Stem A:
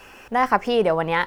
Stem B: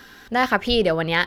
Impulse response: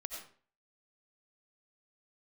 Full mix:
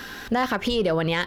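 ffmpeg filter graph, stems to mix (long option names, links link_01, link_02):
-filter_complex "[0:a]acompressor=threshold=-19dB:ratio=6,volume=-7dB,asplit=2[link_01][link_02];[1:a]acontrast=77,volume=1dB[link_03];[link_02]apad=whole_len=55981[link_04];[link_03][link_04]sidechaincompress=threshold=-35dB:ratio=8:attack=39:release=257[link_05];[link_01][link_05]amix=inputs=2:normalize=0,alimiter=limit=-14.5dB:level=0:latency=1:release=80"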